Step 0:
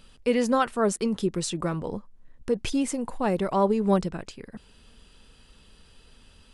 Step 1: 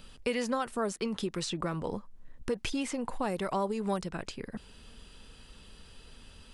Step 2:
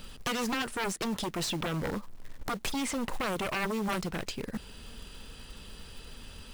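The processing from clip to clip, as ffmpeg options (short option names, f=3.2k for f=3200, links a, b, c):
-filter_complex "[0:a]acrossover=split=770|5100[a][b][c];[a]acompressor=threshold=-35dB:ratio=4[d];[b]acompressor=threshold=-37dB:ratio=4[e];[c]acompressor=threshold=-49dB:ratio=4[f];[d][e][f]amix=inputs=3:normalize=0,volume=2dB"
-af "aeval=exprs='0.141*(cos(1*acos(clip(val(0)/0.141,-1,1)))-cos(1*PI/2))+0.0282*(cos(3*acos(clip(val(0)/0.141,-1,1)))-cos(3*PI/2))+0.0178*(cos(6*acos(clip(val(0)/0.141,-1,1)))-cos(6*PI/2))+0.0631*(cos(7*acos(clip(val(0)/0.141,-1,1)))-cos(7*PI/2))':c=same,acrusher=bits=4:mode=log:mix=0:aa=0.000001,volume=-3dB"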